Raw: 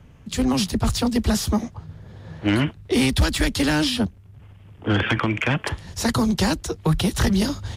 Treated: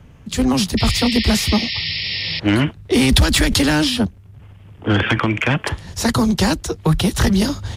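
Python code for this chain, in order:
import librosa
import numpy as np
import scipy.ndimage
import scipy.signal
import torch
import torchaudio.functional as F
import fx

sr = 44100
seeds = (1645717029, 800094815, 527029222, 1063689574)

y = fx.spec_paint(x, sr, seeds[0], shape='noise', start_s=0.77, length_s=1.63, low_hz=1800.0, high_hz=5500.0, level_db=-28.0)
y = fx.pre_swell(y, sr, db_per_s=33.0, at=(2.93, 3.81))
y = y * 10.0 ** (4.0 / 20.0)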